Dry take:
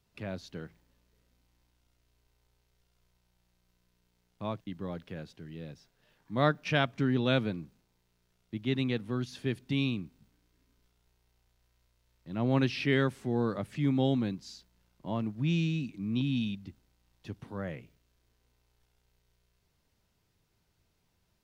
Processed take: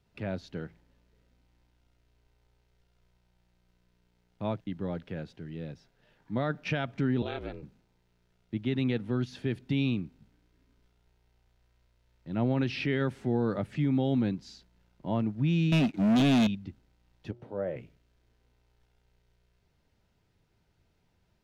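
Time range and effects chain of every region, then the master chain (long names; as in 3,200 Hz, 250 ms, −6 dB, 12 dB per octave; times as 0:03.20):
0:07.22–0:07.63: high-pass filter 280 Hz + downward compressor 4 to 1, threshold −32 dBFS + ring modulation 150 Hz
0:15.72–0:16.47: high-pass filter 190 Hz 6 dB per octave + leveller curve on the samples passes 5 + expander for the loud parts 2.5 to 1, over −38 dBFS
0:17.31–0:17.76: parametric band 540 Hz +15 dB 1.4 octaves + tuned comb filter 120 Hz, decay 0.65 s, harmonics odd, mix 70%
whole clip: low-pass filter 2,600 Hz 6 dB per octave; notch filter 1,100 Hz, Q 8.4; brickwall limiter −23.5 dBFS; level +4 dB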